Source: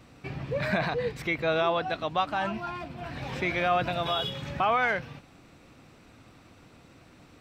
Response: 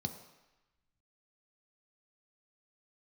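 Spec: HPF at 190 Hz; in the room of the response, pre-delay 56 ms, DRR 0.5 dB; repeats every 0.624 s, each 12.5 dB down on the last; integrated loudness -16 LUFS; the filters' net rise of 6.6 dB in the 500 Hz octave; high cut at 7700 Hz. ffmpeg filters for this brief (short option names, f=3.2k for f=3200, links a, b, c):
-filter_complex "[0:a]highpass=190,lowpass=7.7k,equalizer=f=500:t=o:g=8.5,aecho=1:1:624|1248|1872:0.237|0.0569|0.0137,asplit=2[a][b];[1:a]atrim=start_sample=2205,adelay=56[c];[b][c]afir=irnorm=-1:irlink=0,volume=-1dB[d];[a][d]amix=inputs=2:normalize=0,volume=5dB"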